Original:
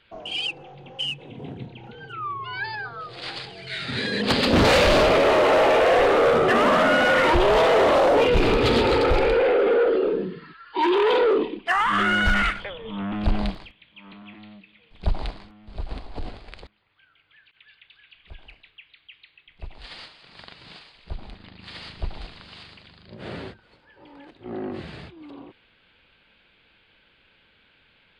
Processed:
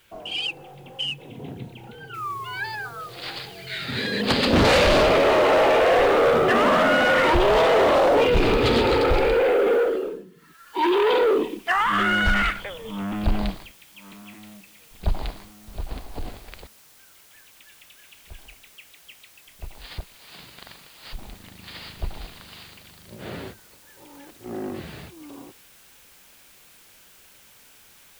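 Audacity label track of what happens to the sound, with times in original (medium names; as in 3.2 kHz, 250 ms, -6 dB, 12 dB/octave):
2.140000	2.140000	noise floor step -64 dB -53 dB
9.740000	10.840000	dip -16.5 dB, fades 0.50 s
19.980000	21.130000	reverse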